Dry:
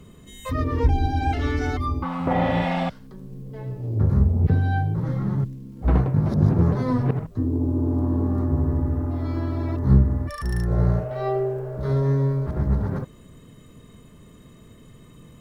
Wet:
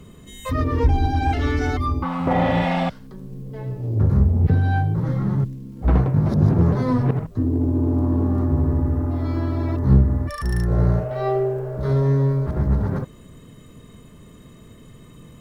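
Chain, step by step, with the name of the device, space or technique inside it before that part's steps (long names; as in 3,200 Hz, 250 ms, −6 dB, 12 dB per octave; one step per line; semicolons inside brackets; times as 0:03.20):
parallel distortion (in parallel at −8 dB: hard clipping −18.5 dBFS, distortion −10 dB)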